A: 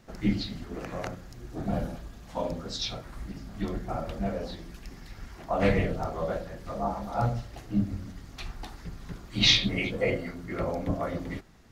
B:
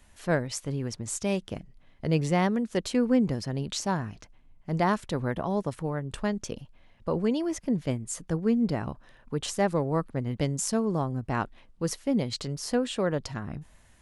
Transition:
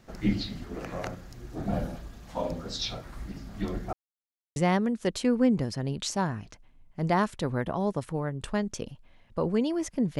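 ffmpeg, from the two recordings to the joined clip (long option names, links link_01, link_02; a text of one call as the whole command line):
ffmpeg -i cue0.wav -i cue1.wav -filter_complex "[0:a]apad=whole_dur=10.19,atrim=end=10.19,asplit=2[link_01][link_02];[link_01]atrim=end=3.93,asetpts=PTS-STARTPTS,afade=type=out:start_time=3.926:duration=0.004:curve=hsin[link_03];[link_02]atrim=start=3.93:end=4.56,asetpts=PTS-STARTPTS,volume=0[link_04];[1:a]atrim=start=2.26:end=7.89,asetpts=PTS-STARTPTS,afade=type=in:duration=0.004:curve=hsin[link_05];[link_03][link_04][link_05]concat=n=3:v=0:a=1" out.wav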